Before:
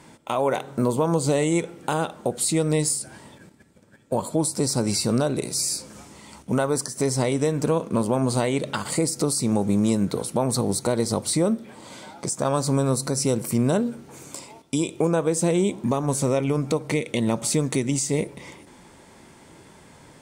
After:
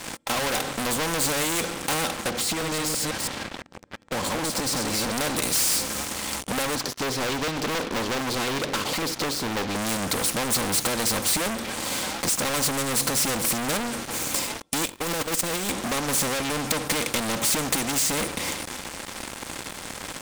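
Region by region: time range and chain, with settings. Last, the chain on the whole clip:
2.29–5.12 reverse delay 0.164 s, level -3.5 dB + compressor, threshold -23 dBFS + air absorption 110 m
6.75–9.76 speaker cabinet 130–3800 Hz, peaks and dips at 200 Hz -8 dB, 400 Hz +9 dB, 1900 Hz -8 dB + stepped notch 11 Hz 440–2700 Hz
14.85–15.7 zero-crossing step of -26 dBFS + gate -20 dBFS, range -29 dB + negative-ratio compressor -30 dBFS
whole clip: comb 3.8 ms, depth 51%; sample leveller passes 5; spectral compressor 2:1

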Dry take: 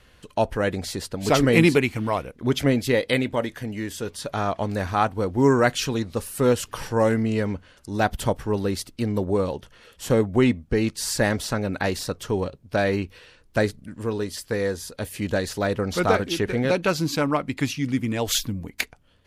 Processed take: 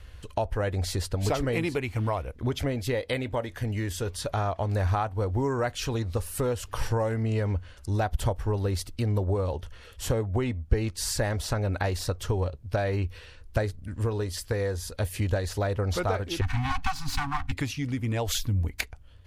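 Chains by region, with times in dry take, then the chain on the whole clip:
16.41–17.52 minimum comb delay 2.7 ms + Chebyshev band-stop 270–760 Hz, order 5 + high shelf 11000 Hz -6 dB
whole clip: dynamic EQ 710 Hz, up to +5 dB, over -35 dBFS, Q 0.88; compressor 3:1, threshold -28 dBFS; resonant low shelf 120 Hz +11.5 dB, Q 1.5

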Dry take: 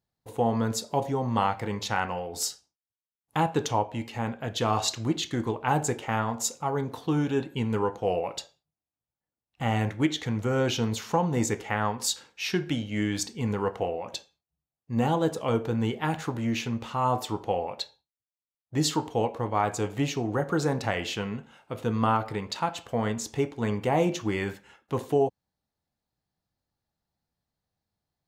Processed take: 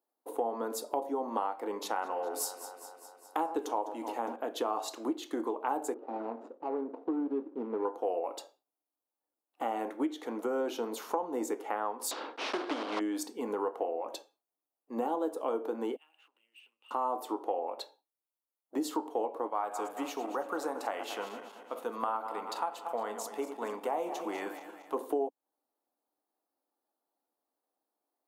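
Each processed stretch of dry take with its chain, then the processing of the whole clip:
1.74–4.36 bell 8100 Hz +2.5 dB 1.6 oct + echo with dull and thin repeats by turns 0.102 s, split 1900 Hz, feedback 80%, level -13.5 dB
5.94–7.85 median filter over 41 samples + tape spacing loss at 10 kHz 33 dB
12.11–13.01 block floating point 3-bit + LPF 3700 Hz 24 dB/oct + spectral compressor 2:1
15.96–16.91 compressor 12:1, threshold -35 dBFS + band-pass 2800 Hz, Q 18 + sample leveller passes 1
19.47–24.94 regenerating reverse delay 0.114 s, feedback 68%, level -11.5 dB + bell 330 Hz -10.5 dB 1.4 oct
whole clip: elliptic high-pass 280 Hz, stop band 60 dB; band shelf 3500 Hz -11.5 dB 2.5 oct; compressor 3:1, threshold -35 dBFS; gain +3.5 dB

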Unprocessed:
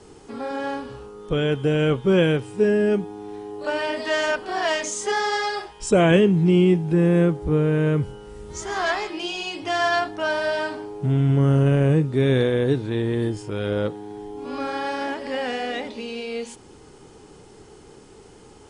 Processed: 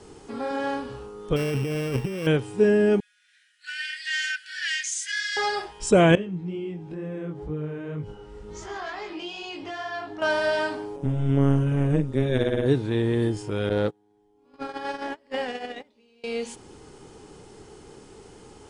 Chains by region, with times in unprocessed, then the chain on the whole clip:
1.36–2.27 sample sorter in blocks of 16 samples + high shelf 2700 Hz -8.5 dB + negative-ratio compressor -27 dBFS
3–5.37 steep high-pass 1500 Hz 96 dB/oct + mismatched tape noise reduction decoder only
6.15–10.22 compressor 3:1, threshold -29 dBFS + chorus 2.1 Hz, delay 19 ms, depth 3.6 ms + air absorption 76 m
10.96–12.66 notch 4300 Hz, Q 6.3 + AM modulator 140 Hz, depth 80%
13.69–16.24 gate -27 dBFS, range -28 dB + Doppler distortion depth 0.12 ms
whole clip: dry

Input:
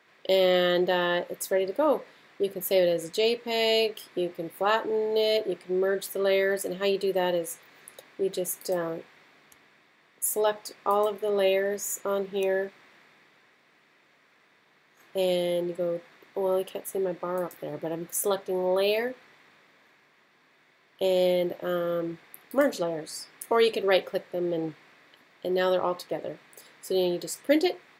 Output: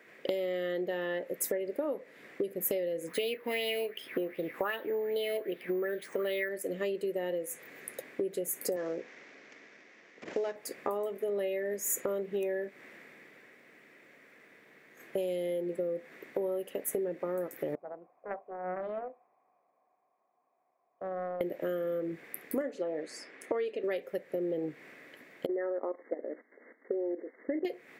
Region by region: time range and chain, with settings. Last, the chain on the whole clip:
3.07–6.49 high shelf 9400 Hz -10.5 dB + careless resampling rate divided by 3×, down filtered, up hold + LFO bell 2.6 Hz 960–3700 Hz +16 dB
8.76–10.56 CVSD 32 kbps + Bessel high-pass 230 Hz
17.75–21.41 vocal tract filter a + Doppler distortion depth 0.3 ms
22.61–23.84 HPF 260 Hz + air absorption 110 m
25.46–27.65 level quantiser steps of 14 dB + brick-wall FIR band-pass 210–2200 Hz + air absorption 410 m
whole clip: ten-band EQ 250 Hz +6 dB, 500 Hz +8 dB, 1000 Hz -6 dB, 2000 Hz +8 dB, 4000 Hz -8 dB; compressor 16:1, threshold -30 dBFS; high shelf 7800 Hz +7.5 dB

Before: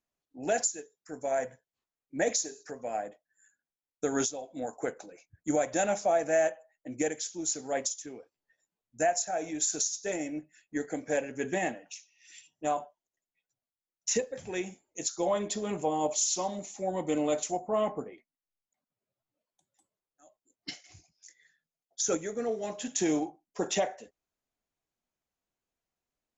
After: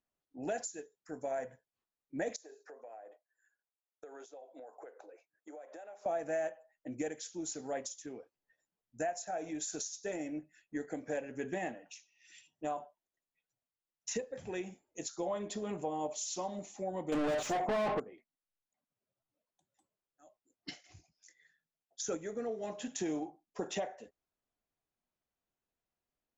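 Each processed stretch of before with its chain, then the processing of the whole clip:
2.36–6.06 HPF 400 Hz 24 dB/oct + high shelf 2500 Hz -12 dB + compressor 8:1, threshold -45 dBFS
17.12–18 low shelf 190 Hz +10.5 dB + overdrive pedal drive 33 dB, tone 3700 Hz, clips at -16 dBFS
whole clip: high shelf 4600 Hz -10 dB; notch 2200 Hz, Q 29; compressor 2:1, threshold -36 dBFS; gain -1.5 dB

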